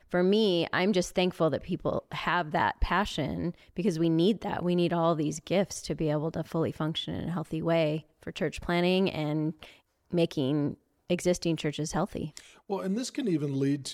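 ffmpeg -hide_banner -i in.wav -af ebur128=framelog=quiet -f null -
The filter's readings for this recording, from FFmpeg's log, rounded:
Integrated loudness:
  I:         -29.2 LUFS
  Threshold: -39.5 LUFS
Loudness range:
  LRA:         3.0 LU
  Threshold: -49.7 LUFS
  LRA low:   -31.2 LUFS
  LRA high:  -28.2 LUFS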